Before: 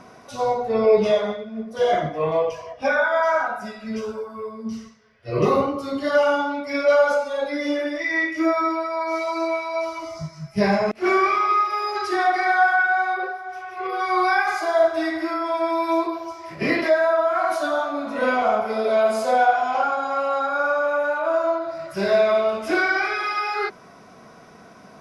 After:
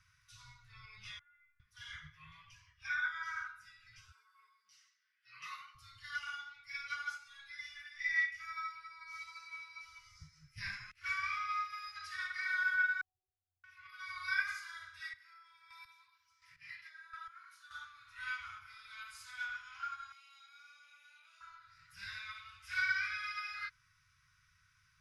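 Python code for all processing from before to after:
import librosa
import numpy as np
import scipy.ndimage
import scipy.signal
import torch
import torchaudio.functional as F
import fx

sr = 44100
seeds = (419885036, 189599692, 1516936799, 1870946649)

y = fx.chain(x, sr, fx.lowpass(hz=2300.0, slope=24),
    fx.stiff_resonator(f0_hz=280.0, decay_s=0.42, stiffness=0.002),
    fx.env_flatten(amount_pct=70), at=(1.19, 1.6))
y = fx.chain(y, sr, fx.highpass(hz=300.0, slope=24),
    fx.dynamic_eq(hz=1900.0, q=1.0, threshold_db=-40.0, ratio=4.0, max_db=4), at=(4.11, 5.75))
y = fx.chain(y, sr, fx.steep_lowpass(hz=690.0, slope=72),
    fx.low_shelf(hz=330.0, db=-11.5), at=(13.01, 13.64))
y = fx.chain(y, sr, fx.highpass(hz=270.0, slope=6),
    fx.chopper(hz=1.4, depth_pct=65, duty_pct=20), at=(14.99, 17.71))
y = fx.chain(y, sr, fx.highpass(hz=620.0, slope=12),
    fx.band_shelf(hz=1300.0, db=-15.5, octaves=1.2), at=(20.12, 21.41))
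y = scipy.signal.sosfilt(scipy.signal.cheby2(4, 50, [220.0, 730.0], 'bandstop', fs=sr, output='sos'), y)
y = fx.low_shelf(y, sr, hz=150.0, db=8.5)
y = fx.upward_expand(y, sr, threshold_db=-38.0, expansion=1.5)
y = y * librosa.db_to_amplitude(-8.0)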